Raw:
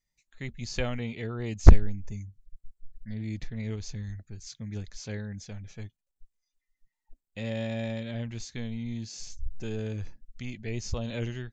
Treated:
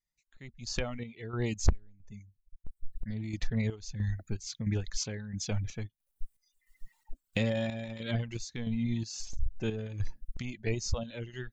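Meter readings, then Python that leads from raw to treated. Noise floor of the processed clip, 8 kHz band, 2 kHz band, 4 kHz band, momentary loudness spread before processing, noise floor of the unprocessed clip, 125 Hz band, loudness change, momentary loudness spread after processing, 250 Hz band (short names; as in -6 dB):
-82 dBFS, n/a, -0.5 dB, +2.0 dB, 12 LU, -85 dBFS, -4.0 dB, -3.5 dB, 13 LU, -1.0 dB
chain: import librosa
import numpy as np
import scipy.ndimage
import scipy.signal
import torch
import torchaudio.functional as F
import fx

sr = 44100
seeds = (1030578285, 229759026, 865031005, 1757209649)

y = fx.recorder_agc(x, sr, target_db=-10.0, rise_db_per_s=15.0, max_gain_db=30)
y = fx.dereverb_blind(y, sr, rt60_s=1.7)
y = 10.0 ** (-4.5 / 20.0) * np.tanh(y / 10.0 ** (-4.5 / 20.0))
y = fx.chopper(y, sr, hz=1.5, depth_pct=60, duty_pct=55)
y = y * librosa.db_to_amplitude(-9.0)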